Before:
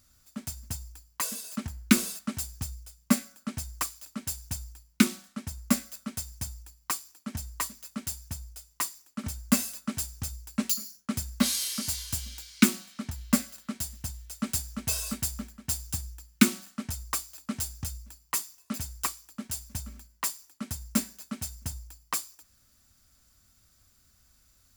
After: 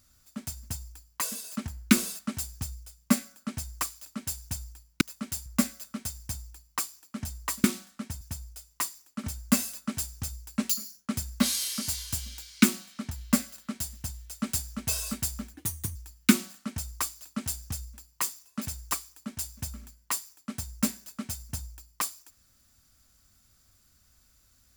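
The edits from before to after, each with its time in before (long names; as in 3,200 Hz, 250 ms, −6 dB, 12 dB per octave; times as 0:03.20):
0:05.01–0:05.58: swap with 0:07.76–0:08.21
0:15.54–0:16.08: play speed 130%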